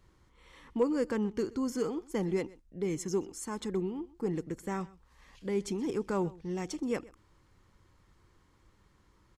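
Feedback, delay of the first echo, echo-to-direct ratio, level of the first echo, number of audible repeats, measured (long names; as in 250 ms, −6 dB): repeats not evenly spaced, 126 ms, −21.5 dB, −21.5 dB, 1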